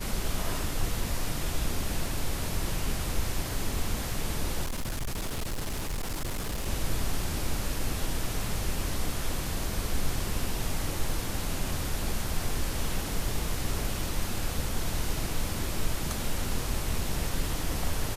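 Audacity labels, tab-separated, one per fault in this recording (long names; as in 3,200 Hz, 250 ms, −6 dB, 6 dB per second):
4.640000	6.680000	clipping −28 dBFS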